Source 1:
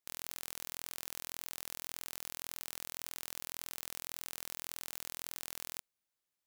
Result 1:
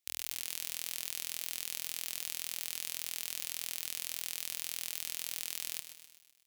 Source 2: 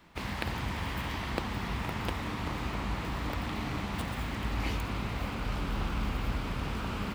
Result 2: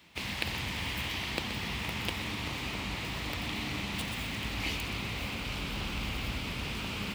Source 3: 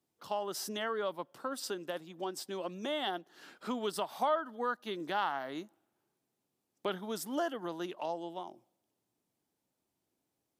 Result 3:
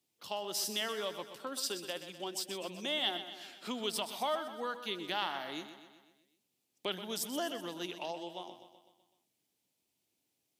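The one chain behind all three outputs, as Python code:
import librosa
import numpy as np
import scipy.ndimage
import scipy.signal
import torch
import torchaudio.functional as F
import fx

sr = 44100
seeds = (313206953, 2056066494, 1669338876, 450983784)

p1 = scipy.signal.sosfilt(scipy.signal.butter(2, 59.0, 'highpass', fs=sr, output='sos'), x)
p2 = fx.high_shelf_res(p1, sr, hz=1900.0, db=7.5, q=1.5)
p3 = p2 + fx.echo_feedback(p2, sr, ms=126, feedback_pct=56, wet_db=-11.0, dry=0)
y = p3 * librosa.db_to_amplitude(-3.0)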